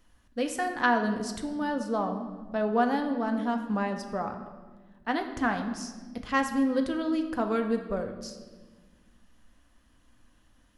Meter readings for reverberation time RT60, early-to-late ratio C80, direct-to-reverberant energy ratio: 1.4 s, 10.0 dB, 4.5 dB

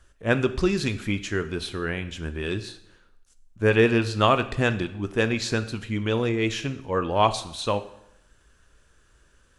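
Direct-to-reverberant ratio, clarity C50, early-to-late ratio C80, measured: 11.0 dB, 14.5 dB, 17.0 dB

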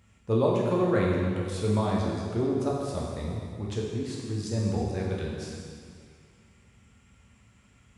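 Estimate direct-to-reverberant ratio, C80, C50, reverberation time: -4.0 dB, 1.5 dB, 0.0 dB, 2.1 s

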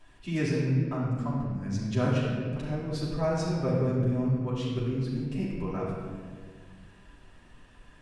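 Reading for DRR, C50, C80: -8.5 dB, -0.5 dB, 1.0 dB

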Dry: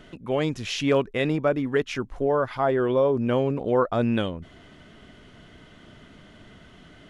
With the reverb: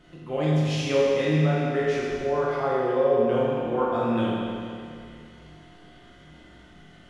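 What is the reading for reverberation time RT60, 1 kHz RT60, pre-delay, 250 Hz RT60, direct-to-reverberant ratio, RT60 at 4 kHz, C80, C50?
2.3 s, 2.3 s, 6 ms, 2.4 s, -8.0 dB, 2.3 s, -1.5 dB, -3.5 dB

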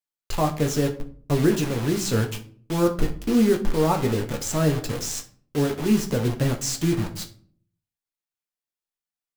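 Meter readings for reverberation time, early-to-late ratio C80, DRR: 0.50 s, 18.0 dB, 2.5 dB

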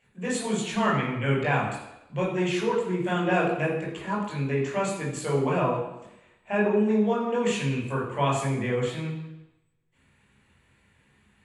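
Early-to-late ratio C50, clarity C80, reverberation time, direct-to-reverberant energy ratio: 3.5 dB, 6.5 dB, 0.90 s, -4.5 dB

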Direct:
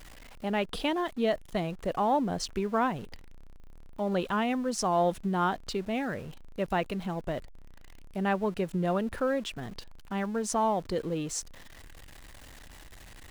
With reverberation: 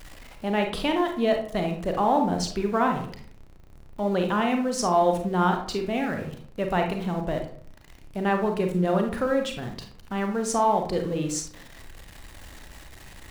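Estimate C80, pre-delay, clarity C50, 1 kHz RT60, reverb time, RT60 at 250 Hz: 11.5 dB, 32 ms, 6.5 dB, 0.50 s, 0.55 s, 0.70 s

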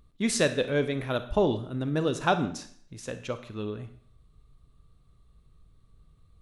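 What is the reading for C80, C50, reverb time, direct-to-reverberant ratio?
15.5 dB, 11.5 dB, 0.60 s, 10.0 dB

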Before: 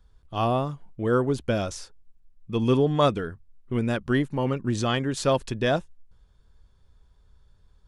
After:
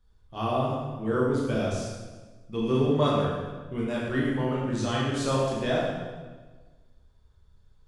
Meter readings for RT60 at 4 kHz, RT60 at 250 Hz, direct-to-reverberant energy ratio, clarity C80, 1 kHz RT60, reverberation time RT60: 1.1 s, 1.5 s, -6.0 dB, 1.5 dB, 1.3 s, 1.4 s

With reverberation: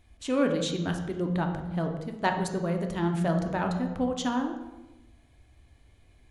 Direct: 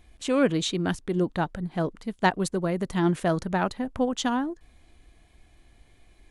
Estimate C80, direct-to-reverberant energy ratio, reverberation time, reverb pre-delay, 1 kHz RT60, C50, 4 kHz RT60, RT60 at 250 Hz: 9.0 dB, 3.5 dB, 1.1 s, 3 ms, 1.0 s, 6.5 dB, 0.75 s, no reading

